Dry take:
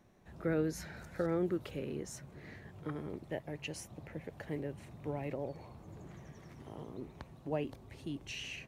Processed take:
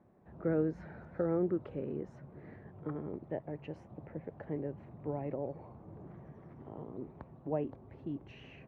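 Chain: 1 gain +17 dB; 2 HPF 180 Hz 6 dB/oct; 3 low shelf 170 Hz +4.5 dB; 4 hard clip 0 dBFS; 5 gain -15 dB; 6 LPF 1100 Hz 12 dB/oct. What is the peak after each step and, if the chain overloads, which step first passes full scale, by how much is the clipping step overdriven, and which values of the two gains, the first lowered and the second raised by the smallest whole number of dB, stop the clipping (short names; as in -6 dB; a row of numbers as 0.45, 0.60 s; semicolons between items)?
-4.5, -5.0, -4.5, -4.5, -19.5, -20.5 dBFS; no overload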